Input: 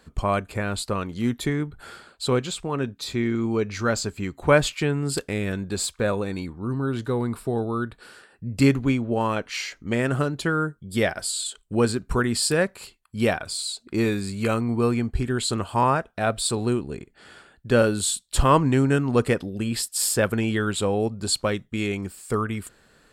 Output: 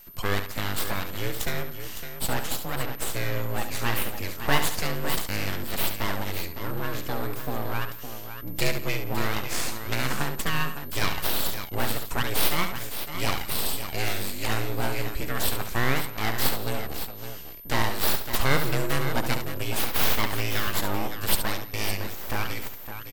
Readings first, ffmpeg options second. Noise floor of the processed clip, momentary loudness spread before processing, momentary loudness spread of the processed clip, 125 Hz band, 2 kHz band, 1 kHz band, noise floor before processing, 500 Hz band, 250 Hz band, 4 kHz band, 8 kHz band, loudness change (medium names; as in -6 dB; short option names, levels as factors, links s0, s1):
-37 dBFS, 9 LU, 8 LU, -5.5 dB, 0.0 dB, -3.0 dB, -60 dBFS, -8.5 dB, -10.0 dB, +0.5 dB, -3.5 dB, -4.0 dB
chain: -filter_complex "[0:a]tiltshelf=f=1200:g=-5.5,asplit=2[s0][s1];[s1]acompressor=threshold=0.0316:ratio=6,volume=0.944[s2];[s0][s2]amix=inputs=2:normalize=0,afreqshift=-25,aeval=exprs='abs(val(0))':c=same,aeval=exprs='val(0)+0.00562*sin(2*PI*13000*n/s)':c=same,asplit=2[s3][s4];[s4]aecho=0:1:70|172|560:0.376|0.119|0.335[s5];[s3][s5]amix=inputs=2:normalize=0,volume=0.708"